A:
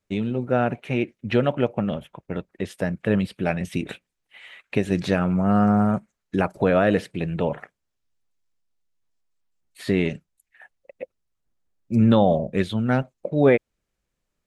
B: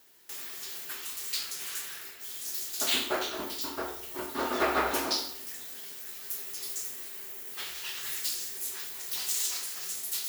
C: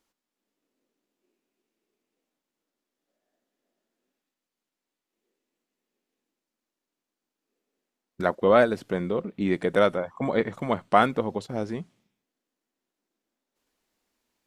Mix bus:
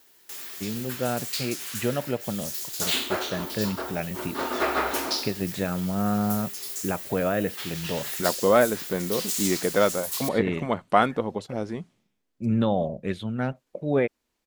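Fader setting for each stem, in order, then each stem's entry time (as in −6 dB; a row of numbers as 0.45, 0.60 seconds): −6.5, +2.0, −0.5 decibels; 0.50, 0.00, 0.00 seconds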